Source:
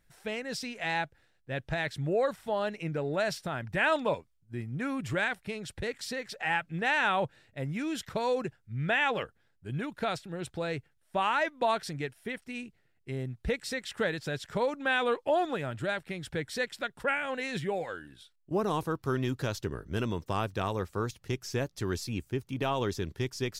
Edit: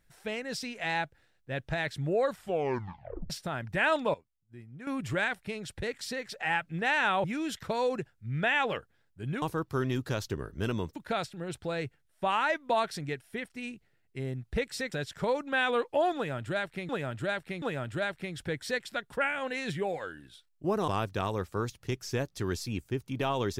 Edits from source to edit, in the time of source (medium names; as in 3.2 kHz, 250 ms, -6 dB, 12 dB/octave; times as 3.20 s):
2.37 s: tape stop 0.93 s
4.14–4.87 s: gain -11.5 dB
7.24–7.70 s: delete
13.84–14.25 s: delete
15.49–16.22 s: loop, 3 plays
18.75–20.29 s: move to 9.88 s